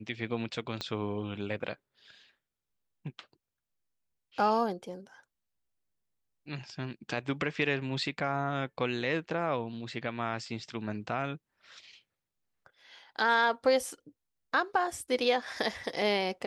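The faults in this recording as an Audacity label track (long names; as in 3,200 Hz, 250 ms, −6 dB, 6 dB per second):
0.810000	0.810000	click −20 dBFS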